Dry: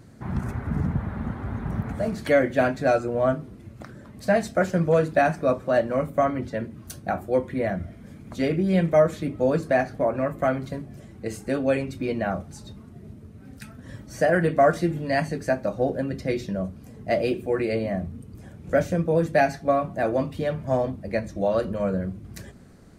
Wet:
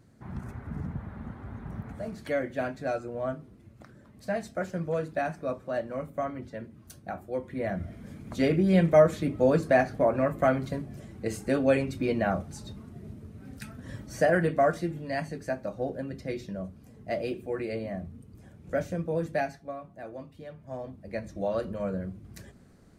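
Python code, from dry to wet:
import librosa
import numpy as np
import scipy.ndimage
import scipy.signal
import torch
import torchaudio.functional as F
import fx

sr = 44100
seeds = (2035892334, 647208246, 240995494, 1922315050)

y = fx.gain(x, sr, db=fx.line((7.38, -10.0), (7.95, -0.5), (14.03, -0.5), (14.94, -8.0), (19.34, -8.0), (19.74, -17.5), (20.59, -17.5), (21.29, -6.5)))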